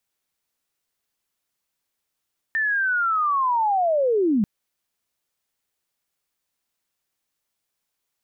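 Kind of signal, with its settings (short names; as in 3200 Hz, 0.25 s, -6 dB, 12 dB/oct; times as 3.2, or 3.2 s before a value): chirp linear 1800 Hz -> 190 Hz -19.5 dBFS -> -16.5 dBFS 1.89 s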